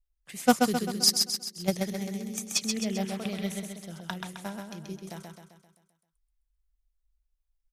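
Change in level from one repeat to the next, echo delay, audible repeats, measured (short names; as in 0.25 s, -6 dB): -6.0 dB, 0.131 s, 6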